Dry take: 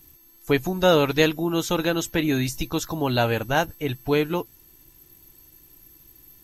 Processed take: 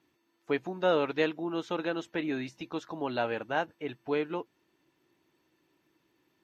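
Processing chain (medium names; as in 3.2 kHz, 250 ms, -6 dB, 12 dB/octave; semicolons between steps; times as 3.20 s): band-pass 250–2700 Hz; trim -7.5 dB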